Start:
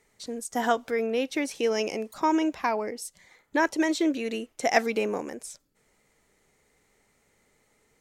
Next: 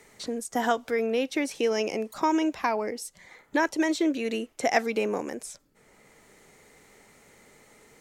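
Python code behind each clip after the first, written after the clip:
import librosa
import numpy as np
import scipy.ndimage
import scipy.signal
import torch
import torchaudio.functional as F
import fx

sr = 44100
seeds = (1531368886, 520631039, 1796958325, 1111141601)

y = fx.band_squash(x, sr, depth_pct=40)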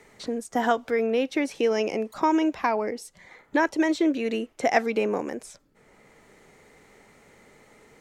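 y = fx.high_shelf(x, sr, hz=4700.0, db=-9.5)
y = F.gain(torch.from_numpy(y), 2.5).numpy()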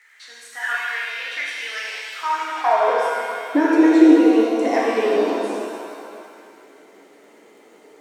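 y = fx.dmg_crackle(x, sr, seeds[0], per_s=23.0, level_db=-41.0)
y = fx.filter_sweep_highpass(y, sr, from_hz=1700.0, to_hz=320.0, start_s=2.14, end_s=3.15, q=3.8)
y = fx.rev_shimmer(y, sr, seeds[1], rt60_s=2.3, semitones=7, shimmer_db=-8, drr_db=-5.5)
y = F.gain(torch.from_numpy(y), -5.5).numpy()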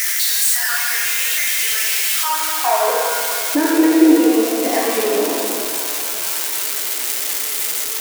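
y = x + 0.5 * 10.0 ** (-9.5 / 20.0) * np.diff(np.sign(x), prepend=np.sign(x[:1]))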